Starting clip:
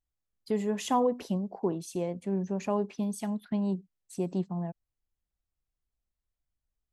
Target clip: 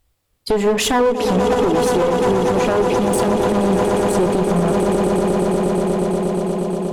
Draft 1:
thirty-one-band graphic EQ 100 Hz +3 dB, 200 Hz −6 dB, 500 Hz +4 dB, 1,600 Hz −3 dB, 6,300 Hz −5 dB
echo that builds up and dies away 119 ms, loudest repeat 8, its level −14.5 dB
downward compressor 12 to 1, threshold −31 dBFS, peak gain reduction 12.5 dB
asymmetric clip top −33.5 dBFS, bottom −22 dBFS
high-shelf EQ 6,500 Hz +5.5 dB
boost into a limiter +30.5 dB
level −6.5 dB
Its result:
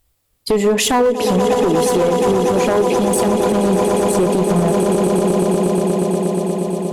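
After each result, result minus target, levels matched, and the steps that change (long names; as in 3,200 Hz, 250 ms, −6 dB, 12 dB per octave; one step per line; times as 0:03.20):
asymmetric clip: distortion −5 dB; 8,000 Hz band +3.0 dB
change: asymmetric clip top −41 dBFS, bottom −22 dBFS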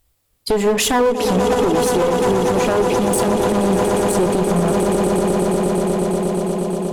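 8,000 Hz band +3.5 dB
change: high-shelf EQ 6,500 Hz −2 dB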